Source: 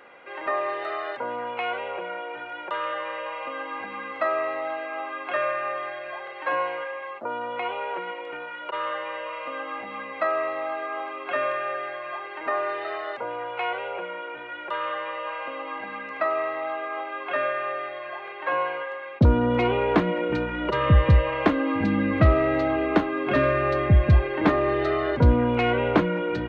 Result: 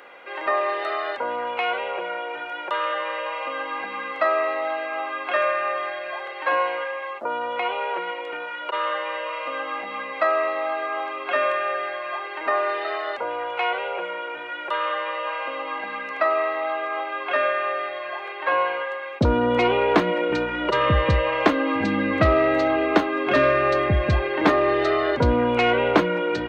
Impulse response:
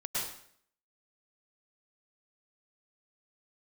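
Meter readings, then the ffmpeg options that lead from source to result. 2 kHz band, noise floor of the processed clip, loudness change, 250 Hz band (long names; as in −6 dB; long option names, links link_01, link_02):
+4.5 dB, −34 dBFS, +2.5 dB, 0.0 dB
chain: -af "bass=frequency=250:gain=-9,treble=frequency=4000:gain=8,volume=4dB"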